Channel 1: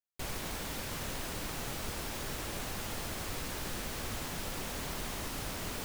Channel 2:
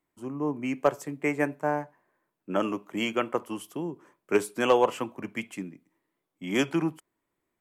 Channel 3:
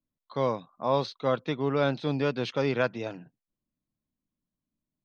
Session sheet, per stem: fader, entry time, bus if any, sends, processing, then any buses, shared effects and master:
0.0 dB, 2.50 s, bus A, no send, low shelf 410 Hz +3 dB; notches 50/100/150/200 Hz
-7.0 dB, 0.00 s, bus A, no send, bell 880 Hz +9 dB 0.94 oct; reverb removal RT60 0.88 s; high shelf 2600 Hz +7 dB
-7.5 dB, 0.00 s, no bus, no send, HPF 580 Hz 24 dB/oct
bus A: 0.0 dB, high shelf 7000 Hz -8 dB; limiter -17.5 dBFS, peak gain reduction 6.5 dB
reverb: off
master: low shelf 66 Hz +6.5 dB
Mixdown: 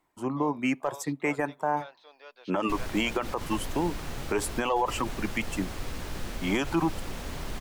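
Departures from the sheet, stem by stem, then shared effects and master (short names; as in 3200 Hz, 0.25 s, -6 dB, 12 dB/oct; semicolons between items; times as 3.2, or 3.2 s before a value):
stem 2 -7.0 dB -> +4.0 dB; stem 3 -7.5 dB -> -16.0 dB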